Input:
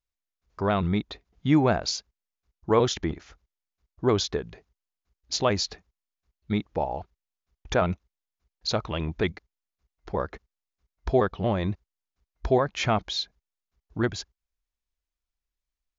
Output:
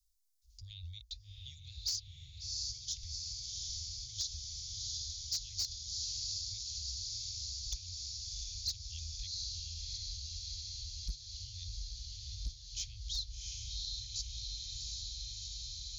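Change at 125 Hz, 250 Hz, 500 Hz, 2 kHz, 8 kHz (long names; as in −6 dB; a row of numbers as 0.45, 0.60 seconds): −15.5 dB, below −40 dB, below −40 dB, −27.5 dB, can't be measured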